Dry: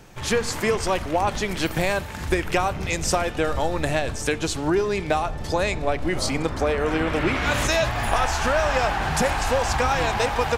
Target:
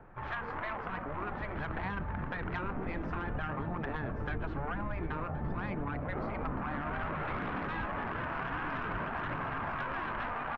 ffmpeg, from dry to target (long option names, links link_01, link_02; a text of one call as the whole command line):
ffmpeg -i in.wav -filter_complex "[0:a]lowpass=frequency=1400:width=0.5412,lowpass=frequency=1400:width=1.3066,afftfilt=real='re*lt(hypot(re,im),0.224)':imag='im*lt(hypot(re,im),0.224)':win_size=1024:overlap=0.75,acrossover=split=320[link_01][link_02];[link_01]dynaudnorm=framelen=680:gausssize=5:maxgain=12dB[link_03];[link_02]aeval=exprs='0.376*(cos(1*acos(clip(val(0)/0.376,-1,1)))-cos(1*PI/2))+0.0299*(cos(8*acos(clip(val(0)/0.376,-1,1)))-cos(8*PI/2))':channel_layout=same[link_04];[link_03][link_04]amix=inputs=2:normalize=0,tiltshelf=frequency=720:gain=-7.5,aecho=1:1:1070:0.106,aphaser=in_gain=1:out_gain=1:delay=4.3:decay=0.21:speed=0.53:type=triangular,alimiter=limit=-19.5dB:level=0:latency=1:release=24,acompressor=threshold=-28dB:ratio=6,lowshelf=frequency=74:gain=5.5,volume=-4.5dB" out.wav